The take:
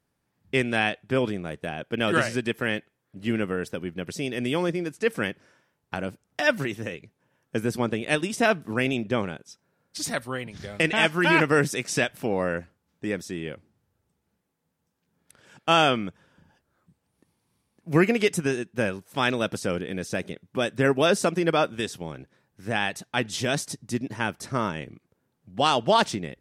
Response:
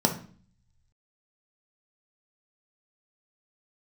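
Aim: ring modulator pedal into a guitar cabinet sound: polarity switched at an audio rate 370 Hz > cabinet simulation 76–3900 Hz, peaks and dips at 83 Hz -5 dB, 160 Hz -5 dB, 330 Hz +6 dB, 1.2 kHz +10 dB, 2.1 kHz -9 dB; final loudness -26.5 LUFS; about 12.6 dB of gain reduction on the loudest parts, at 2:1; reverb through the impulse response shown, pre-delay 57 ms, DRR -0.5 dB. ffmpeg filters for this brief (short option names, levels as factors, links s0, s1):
-filter_complex "[0:a]acompressor=threshold=0.0112:ratio=2,asplit=2[s0][s1];[1:a]atrim=start_sample=2205,adelay=57[s2];[s1][s2]afir=irnorm=-1:irlink=0,volume=0.251[s3];[s0][s3]amix=inputs=2:normalize=0,aeval=exprs='val(0)*sgn(sin(2*PI*370*n/s))':c=same,highpass=76,equalizer=f=83:t=q:w=4:g=-5,equalizer=f=160:t=q:w=4:g=-5,equalizer=f=330:t=q:w=4:g=6,equalizer=f=1200:t=q:w=4:g=10,equalizer=f=2100:t=q:w=4:g=-9,lowpass=f=3900:w=0.5412,lowpass=f=3900:w=1.3066,volume=1.33"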